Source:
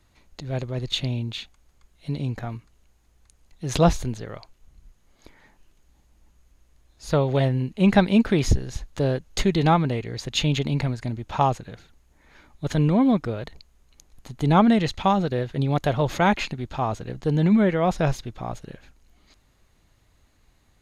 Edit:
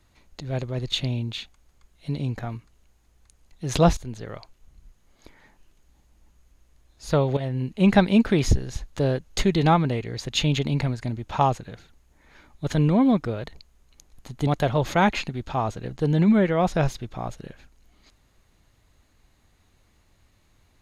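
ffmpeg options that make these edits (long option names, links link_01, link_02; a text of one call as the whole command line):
ffmpeg -i in.wav -filter_complex "[0:a]asplit=4[link_01][link_02][link_03][link_04];[link_01]atrim=end=3.97,asetpts=PTS-STARTPTS,afade=type=out:start_time=3.966:duration=0.004:curve=hsin:silence=0.177828[link_05];[link_02]atrim=start=3.97:end=7.37,asetpts=PTS-STARTPTS,afade=type=in:duration=0.31:silence=0.177828,afade=type=out:start_time=3.396:duration=0.004:curve=hsin:silence=0.223872[link_06];[link_03]atrim=start=7.37:end=14.472,asetpts=PTS-STARTPTS,afade=type=in:duration=0.32:silence=0.223872[link_07];[link_04]atrim=start=15.708[link_08];[link_05][link_06][link_07]concat=n=3:v=0:a=1[link_09];[link_09][link_08]acrossfade=duration=0.004:curve1=hsin:curve2=hsin" out.wav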